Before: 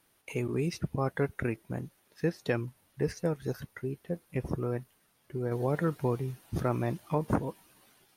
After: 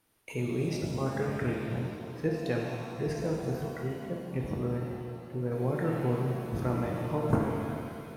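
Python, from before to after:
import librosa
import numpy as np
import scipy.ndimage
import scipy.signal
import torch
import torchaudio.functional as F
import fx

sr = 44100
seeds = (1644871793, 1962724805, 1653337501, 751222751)

p1 = fx.low_shelf(x, sr, hz=440.0, db=4.0)
p2 = fx.level_steps(p1, sr, step_db=22)
p3 = p1 + (p2 * librosa.db_to_amplitude(-1.0))
p4 = fx.rev_shimmer(p3, sr, seeds[0], rt60_s=2.2, semitones=7, shimmer_db=-8, drr_db=-1.0)
y = p4 * librosa.db_to_amplitude(-6.5)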